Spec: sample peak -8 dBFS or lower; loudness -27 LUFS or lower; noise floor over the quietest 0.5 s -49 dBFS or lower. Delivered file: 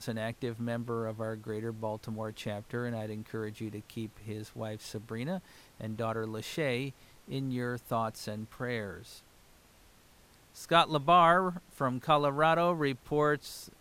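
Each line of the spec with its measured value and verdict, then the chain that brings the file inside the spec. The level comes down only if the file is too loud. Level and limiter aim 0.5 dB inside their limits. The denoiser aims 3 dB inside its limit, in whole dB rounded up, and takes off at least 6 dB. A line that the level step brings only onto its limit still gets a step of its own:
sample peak -11.5 dBFS: pass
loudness -32.0 LUFS: pass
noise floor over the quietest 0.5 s -60 dBFS: pass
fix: none needed

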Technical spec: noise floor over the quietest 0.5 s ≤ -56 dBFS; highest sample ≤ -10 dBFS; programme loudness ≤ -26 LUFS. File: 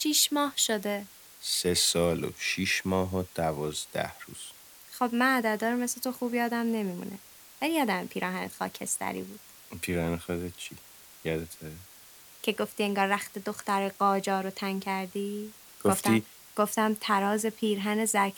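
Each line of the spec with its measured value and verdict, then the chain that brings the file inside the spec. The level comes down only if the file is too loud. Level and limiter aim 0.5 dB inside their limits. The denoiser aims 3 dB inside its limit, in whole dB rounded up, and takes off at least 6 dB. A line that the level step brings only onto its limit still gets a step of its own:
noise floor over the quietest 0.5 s -52 dBFS: fail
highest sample -11.0 dBFS: pass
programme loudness -29.0 LUFS: pass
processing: noise reduction 7 dB, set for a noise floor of -52 dBFS

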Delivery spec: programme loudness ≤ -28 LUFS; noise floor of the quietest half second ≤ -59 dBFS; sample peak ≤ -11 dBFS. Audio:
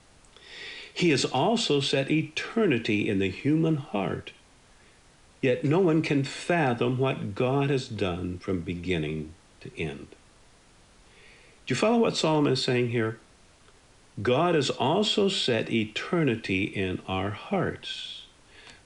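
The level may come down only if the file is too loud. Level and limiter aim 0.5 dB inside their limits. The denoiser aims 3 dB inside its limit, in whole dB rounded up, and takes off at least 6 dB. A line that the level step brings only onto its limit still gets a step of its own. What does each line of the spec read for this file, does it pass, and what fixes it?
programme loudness -26.5 LUFS: fail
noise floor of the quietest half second -57 dBFS: fail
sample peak -12.0 dBFS: pass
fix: noise reduction 6 dB, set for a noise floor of -57 dBFS; trim -2 dB

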